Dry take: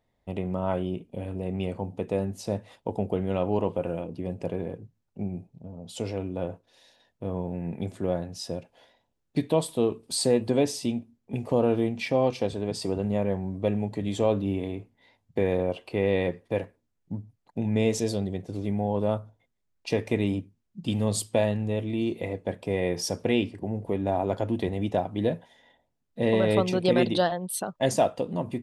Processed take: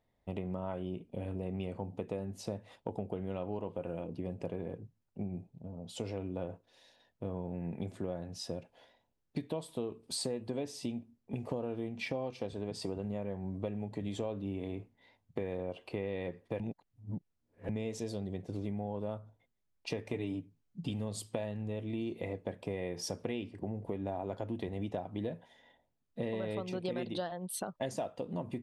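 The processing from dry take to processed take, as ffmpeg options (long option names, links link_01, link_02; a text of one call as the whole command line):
ffmpeg -i in.wav -filter_complex "[0:a]asettb=1/sr,asplit=3[link_01][link_02][link_03];[link_01]atrim=end=20.134[link_04];[link_02]atrim=start=20.13:end=20.9,asetpts=PTS-STARTPTS,afade=type=in:duration=0.004:curve=qsin,afade=type=out:start_time=0.766:duration=0.004:curve=qsin,aecho=1:1:6.9:0.65,atrim=end_sample=33957[link_05];[link_03]atrim=start=20.896[link_06];[link_04][link_05]acrossfade=duration=0.004:curve1=hsin:curve2=qsin[link_07];[link_07][link_06]acrossfade=duration=0.004:curve1=qsin:curve2=hsin,asplit=3[link_08][link_09][link_10];[link_08]atrim=end=16.602[link_11];[link_09]atrim=start=16.598:end=17.692,asetpts=PTS-STARTPTS,areverse[link_12];[link_10]atrim=start=17.688[link_13];[link_11][link_12]acrossfade=duration=0.004:curve1=hsin:curve2=hsin[link_14];[link_14][link_13]acrossfade=duration=0.004:curve1=hsin:curve2=hsin,highshelf=frequency=5700:gain=-5,acompressor=threshold=-30dB:ratio=6,volume=-3.5dB" out.wav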